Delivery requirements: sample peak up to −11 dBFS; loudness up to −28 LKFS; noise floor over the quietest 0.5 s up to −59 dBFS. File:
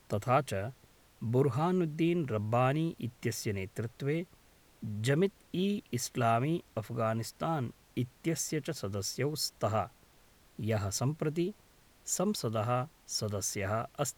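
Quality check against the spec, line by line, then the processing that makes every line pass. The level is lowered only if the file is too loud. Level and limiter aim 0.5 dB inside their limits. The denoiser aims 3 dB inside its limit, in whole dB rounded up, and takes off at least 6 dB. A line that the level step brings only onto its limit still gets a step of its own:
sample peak −15.5 dBFS: in spec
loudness −33.5 LKFS: in spec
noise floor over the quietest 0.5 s −62 dBFS: in spec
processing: no processing needed

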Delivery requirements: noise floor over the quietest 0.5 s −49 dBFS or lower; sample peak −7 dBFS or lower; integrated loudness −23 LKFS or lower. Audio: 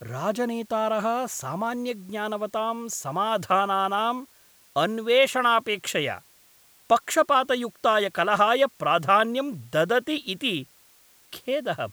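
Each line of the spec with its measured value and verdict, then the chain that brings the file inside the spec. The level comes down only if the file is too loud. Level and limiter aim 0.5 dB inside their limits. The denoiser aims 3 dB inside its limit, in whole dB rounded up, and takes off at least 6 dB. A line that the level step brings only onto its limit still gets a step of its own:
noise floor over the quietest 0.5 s −57 dBFS: in spec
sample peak −6.0 dBFS: out of spec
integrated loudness −24.5 LKFS: in spec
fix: brickwall limiter −7.5 dBFS

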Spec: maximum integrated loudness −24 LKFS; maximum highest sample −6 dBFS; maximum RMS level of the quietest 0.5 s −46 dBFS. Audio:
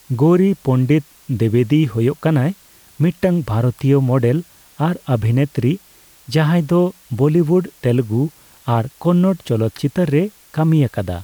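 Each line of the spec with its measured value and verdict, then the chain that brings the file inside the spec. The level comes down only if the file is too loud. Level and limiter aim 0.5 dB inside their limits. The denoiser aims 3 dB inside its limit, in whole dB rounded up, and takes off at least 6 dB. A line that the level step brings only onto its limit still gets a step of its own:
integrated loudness −17.5 LKFS: out of spec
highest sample −5.0 dBFS: out of spec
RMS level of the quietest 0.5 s −48 dBFS: in spec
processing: level −7 dB

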